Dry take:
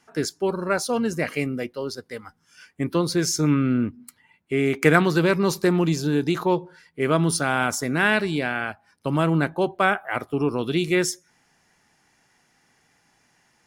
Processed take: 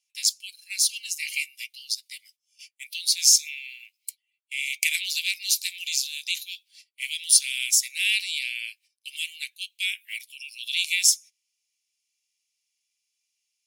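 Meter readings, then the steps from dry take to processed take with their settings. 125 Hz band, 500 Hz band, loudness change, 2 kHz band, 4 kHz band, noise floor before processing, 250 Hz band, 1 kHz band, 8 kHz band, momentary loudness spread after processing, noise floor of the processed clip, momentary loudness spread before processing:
under -40 dB, under -40 dB, -0.5 dB, -3.5 dB, +8.5 dB, -65 dBFS, under -40 dB, under -40 dB, +10.0 dB, 20 LU, -80 dBFS, 10 LU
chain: gate -47 dBFS, range -20 dB; steep high-pass 2300 Hz 72 dB/oct; high shelf 2900 Hz +7.5 dB; gain +3.5 dB

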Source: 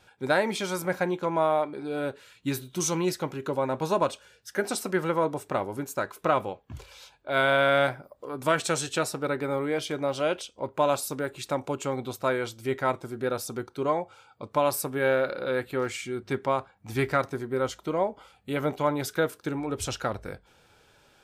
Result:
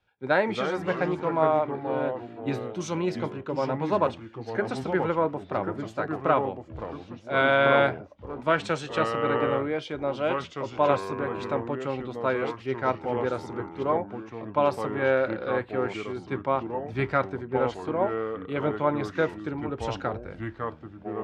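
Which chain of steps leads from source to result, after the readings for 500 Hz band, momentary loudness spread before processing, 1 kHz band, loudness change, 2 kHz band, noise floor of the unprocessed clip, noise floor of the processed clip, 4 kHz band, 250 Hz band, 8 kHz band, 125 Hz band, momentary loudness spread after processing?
+1.5 dB, 9 LU, +1.5 dB, +1.0 dB, +0.5 dB, -61 dBFS, -48 dBFS, -3.5 dB, +1.5 dB, under -10 dB, +1.0 dB, 10 LU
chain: LPF 3000 Hz 12 dB/oct; echoes that change speed 0.223 s, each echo -3 st, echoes 3, each echo -6 dB; three-band expander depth 40%

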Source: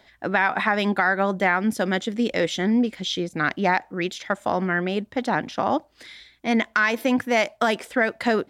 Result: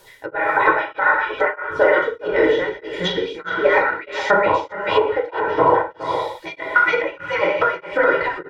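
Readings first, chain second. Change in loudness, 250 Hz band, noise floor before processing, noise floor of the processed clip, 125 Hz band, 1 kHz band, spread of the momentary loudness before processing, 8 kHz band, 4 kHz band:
+4.0 dB, -6.0 dB, -58 dBFS, -45 dBFS, -5.0 dB, +5.5 dB, 6 LU, n/a, +1.0 dB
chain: median-filter separation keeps percussive; high shelf 3300 Hz -5 dB; comb 2.1 ms, depth 100%; non-linear reverb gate 0.25 s falling, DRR -3.5 dB; added noise white -60 dBFS; treble ducked by the level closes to 1500 Hz, closed at -19.5 dBFS; on a send: echo 0.417 s -5.5 dB; on the sum: beating tremolo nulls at 1.6 Hz; gain +6 dB

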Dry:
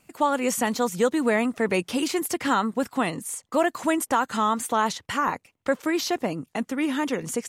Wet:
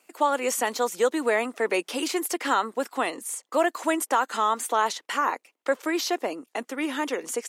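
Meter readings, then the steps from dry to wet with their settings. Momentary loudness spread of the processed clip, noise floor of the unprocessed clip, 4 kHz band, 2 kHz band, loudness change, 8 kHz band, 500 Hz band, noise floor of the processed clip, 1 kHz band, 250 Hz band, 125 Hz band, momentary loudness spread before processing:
6 LU, -71 dBFS, 0.0 dB, 0.0 dB, -1.0 dB, 0.0 dB, -0.5 dB, -75 dBFS, 0.0 dB, -5.5 dB, under -15 dB, 5 LU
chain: HPF 320 Hz 24 dB/oct

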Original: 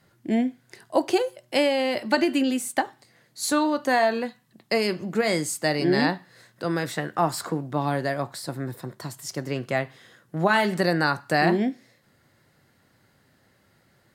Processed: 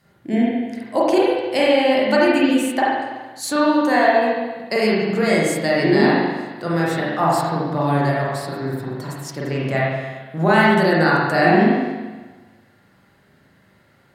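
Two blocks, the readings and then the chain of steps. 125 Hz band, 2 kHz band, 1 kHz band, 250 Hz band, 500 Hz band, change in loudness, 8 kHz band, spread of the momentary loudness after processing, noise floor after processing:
+7.5 dB, +6.5 dB, +7.0 dB, +7.0 dB, +7.5 dB, +6.5 dB, 0.0 dB, 12 LU, -56 dBFS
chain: spring tank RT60 1.3 s, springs 37/42 ms, chirp 35 ms, DRR -6 dB

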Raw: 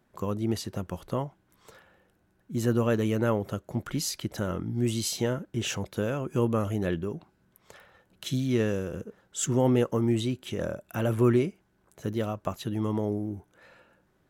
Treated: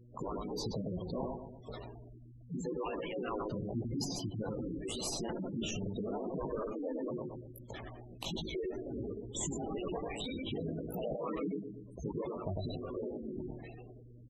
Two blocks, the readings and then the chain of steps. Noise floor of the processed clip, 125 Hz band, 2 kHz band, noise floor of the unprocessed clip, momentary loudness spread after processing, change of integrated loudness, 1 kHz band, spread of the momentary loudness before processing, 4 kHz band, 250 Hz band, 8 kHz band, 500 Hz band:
-54 dBFS, -12.5 dB, -11.5 dB, -69 dBFS, 10 LU, -10.5 dB, -6.5 dB, 11 LU, -6.0 dB, -10.0 dB, -8.0 dB, -9.0 dB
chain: median-filter separation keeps percussive; bell 1500 Hz -10.5 dB 0.53 oct; in parallel at -4 dB: decimation with a swept rate 35×, swing 60% 0.95 Hz; on the sum: chorus voices 4, 1 Hz, delay 19 ms, depth 3 ms; buzz 120 Hz, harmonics 5, -71 dBFS -7 dB/oct; outdoor echo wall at 17 m, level -9 dB; compressor 4:1, threshold -51 dBFS, peak gain reduction 22.5 dB; transient shaper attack -3 dB, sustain +9 dB; on a send: darkening echo 0.118 s, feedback 55%, low-pass 1200 Hz, level -7.5 dB; on the sum: spectral gate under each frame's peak -15 dB strong; gain +13 dB

